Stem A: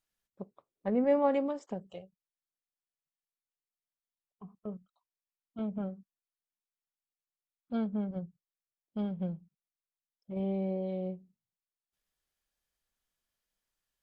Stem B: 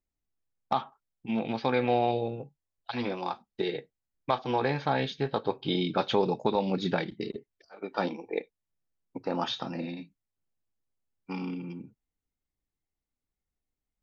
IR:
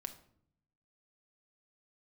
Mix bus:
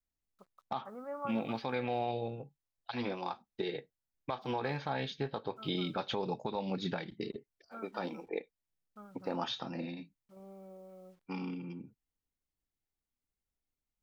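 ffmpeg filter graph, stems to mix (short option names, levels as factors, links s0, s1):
-filter_complex "[0:a]lowpass=f=1300:t=q:w=15,lowshelf=f=480:g=-10,acrusher=bits=9:mix=0:aa=0.000001,volume=0.224[s0];[1:a]adynamicequalizer=threshold=0.0126:dfrequency=340:dqfactor=1.2:tfrequency=340:tqfactor=1.2:attack=5:release=100:ratio=0.375:range=2:mode=cutabove:tftype=bell,volume=0.631[s1];[s0][s1]amix=inputs=2:normalize=0,alimiter=limit=0.0668:level=0:latency=1:release=155"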